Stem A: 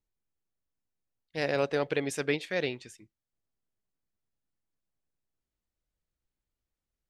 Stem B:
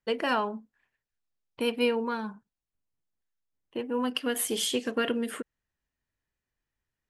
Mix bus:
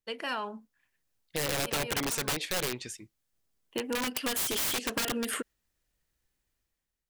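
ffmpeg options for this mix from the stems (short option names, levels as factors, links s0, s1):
-filter_complex "[0:a]highshelf=f=4200:g=5.5,volume=0.531,asplit=2[s0][s1];[1:a]agate=range=0.501:threshold=0.00447:ratio=16:detection=peak,tiltshelf=f=1200:g=-5,volume=0.473[s2];[s1]apad=whole_len=312990[s3];[s2][s3]sidechaincompress=threshold=0.00224:ratio=8:attack=27:release=126[s4];[s0][s4]amix=inputs=2:normalize=0,dynaudnorm=f=190:g=7:m=3.76,aeval=exprs='(mod(10*val(0)+1,2)-1)/10':c=same,acompressor=threshold=0.0398:ratio=6"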